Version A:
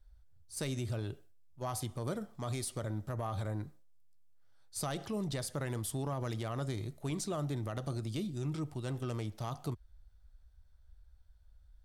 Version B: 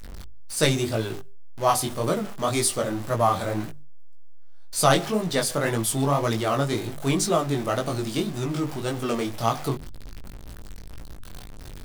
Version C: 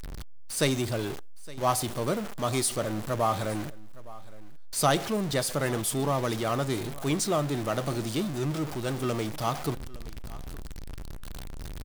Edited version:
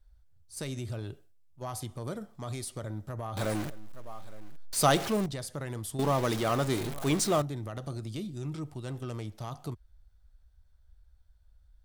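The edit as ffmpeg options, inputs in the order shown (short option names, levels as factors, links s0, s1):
-filter_complex "[2:a]asplit=2[s0][s1];[0:a]asplit=3[s2][s3][s4];[s2]atrim=end=3.372[s5];[s0]atrim=start=3.368:end=5.262[s6];[s3]atrim=start=5.258:end=5.992[s7];[s1]atrim=start=5.988:end=7.422[s8];[s4]atrim=start=7.418[s9];[s5][s6]acrossfade=d=0.004:c1=hsin:c2=hsin[s10];[s10][s7]acrossfade=d=0.004:c1=hsin:c2=hsin[s11];[s11][s8]acrossfade=d=0.004:c1=hsin:c2=hsin[s12];[s12][s9]acrossfade=d=0.004:c1=hsin:c2=hsin"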